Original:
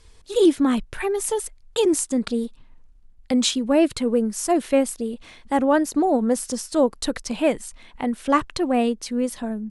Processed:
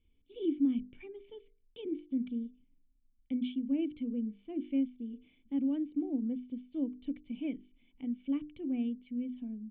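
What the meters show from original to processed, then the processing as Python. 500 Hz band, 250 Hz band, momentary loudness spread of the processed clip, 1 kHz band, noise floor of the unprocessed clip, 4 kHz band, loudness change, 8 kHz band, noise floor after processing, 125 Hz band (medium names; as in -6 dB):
-23.5 dB, -11.0 dB, 14 LU, under -35 dB, -51 dBFS, under -25 dB, -13.5 dB, under -40 dB, -70 dBFS, no reading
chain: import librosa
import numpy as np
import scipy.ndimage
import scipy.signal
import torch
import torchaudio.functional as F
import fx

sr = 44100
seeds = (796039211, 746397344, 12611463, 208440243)

y = fx.formant_cascade(x, sr, vowel='i')
y = fx.hum_notches(y, sr, base_hz=50, count=9)
y = y * 10.0 ** (-7.0 / 20.0)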